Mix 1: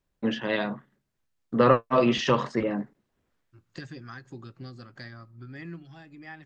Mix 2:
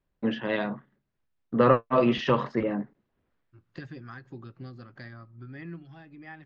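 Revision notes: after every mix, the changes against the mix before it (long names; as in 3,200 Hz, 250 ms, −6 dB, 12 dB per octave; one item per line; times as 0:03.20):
master: add high-frequency loss of the air 200 metres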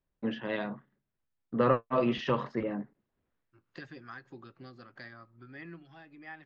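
first voice −5.5 dB
second voice: add high-pass filter 430 Hz 6 dB per octave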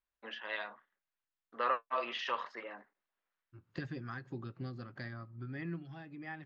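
first voice: add high-pass filter 1,000 Hz 12 dB per octave
second voice: remove high-pass filter 430 Hz 6 dB per octave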